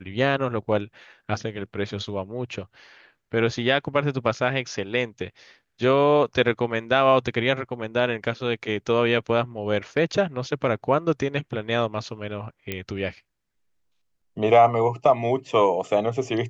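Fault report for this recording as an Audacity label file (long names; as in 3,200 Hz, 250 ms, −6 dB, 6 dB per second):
12.720000	12.720000	click −13 dBFS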